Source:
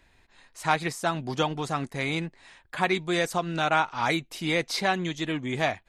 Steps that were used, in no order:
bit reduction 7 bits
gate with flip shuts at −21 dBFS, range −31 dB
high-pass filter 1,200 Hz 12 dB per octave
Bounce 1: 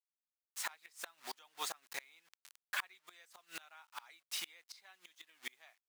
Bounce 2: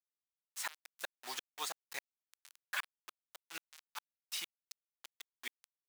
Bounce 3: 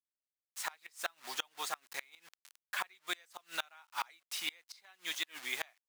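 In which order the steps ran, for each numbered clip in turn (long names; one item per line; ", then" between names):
bit reduction, then gate with flip, then high-pass filter
gate with flip, then bit reduction, then high-pass filter
bit reduction, then high-pass filter, then gate with flip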